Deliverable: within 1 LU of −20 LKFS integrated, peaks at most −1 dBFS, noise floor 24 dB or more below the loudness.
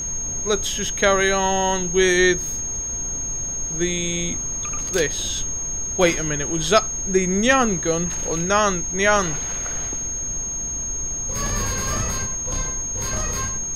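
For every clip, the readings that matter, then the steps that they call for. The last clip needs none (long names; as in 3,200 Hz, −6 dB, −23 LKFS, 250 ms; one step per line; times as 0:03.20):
interfering tone 6,500 Hz; level of the tone −25 dBFS; background noise floor −27 dBFS; target noise floor −45 dBFS; integrated loudness −21.0 LKFS; sample peak −3.5 dBFS; target loudness −20.0 LKFS
→ notch filter 6,500 Hz, Q 30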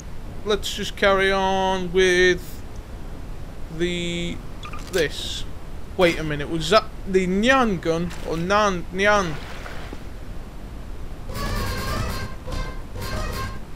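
interfering tone none found; background noise floor −37 dBFS; target noise floor −46 dBFS
→ noise reduction from a noise print 9 dB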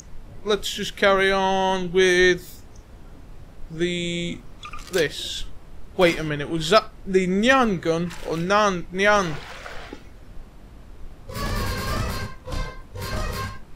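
background noise floor −45 dBFS; target noise floor −47 dBFS
→ noise reduction from a noise print 6 dB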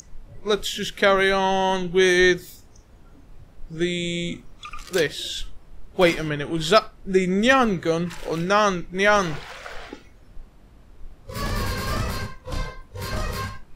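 background noise floor −50 dBFS; integrated loudness −22.5 LKFS; sample peak −4.5 dBFS; target loudness −20.0 LKFS
→ level +2.5 dB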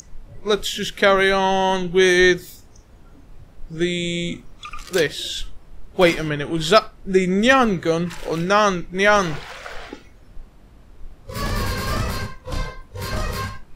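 integrated loudness −20.0 LKFS; sample peak −2.0 dBFS; background noise floor −47 dBFS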